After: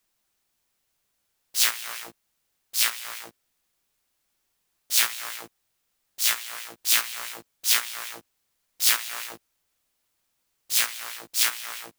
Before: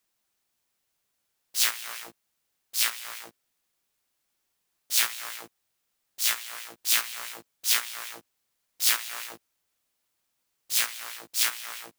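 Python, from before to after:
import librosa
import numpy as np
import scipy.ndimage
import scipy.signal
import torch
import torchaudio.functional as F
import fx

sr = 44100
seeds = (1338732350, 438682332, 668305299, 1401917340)

y = fx.low_shelf(x, sr, hz=63.0, db=8.0)
y = F.gain(torch.from_numpy(y), 2.5).numpy()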